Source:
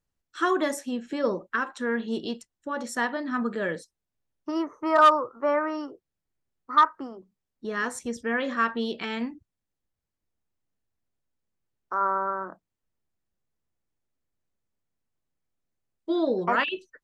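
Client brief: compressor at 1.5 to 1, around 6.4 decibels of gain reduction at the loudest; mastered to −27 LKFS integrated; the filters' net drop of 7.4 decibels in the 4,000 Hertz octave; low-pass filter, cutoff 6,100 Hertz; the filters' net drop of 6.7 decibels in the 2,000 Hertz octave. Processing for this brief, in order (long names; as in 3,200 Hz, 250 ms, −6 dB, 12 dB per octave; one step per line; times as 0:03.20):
low-pass filter 6,100 Hz
parametric band 2,000 Hz −8 dB
parametric band 4,000 Hz −6 dB
downward compressor 1.5 to 1, threshold −34 dBFS
level +6.5 dB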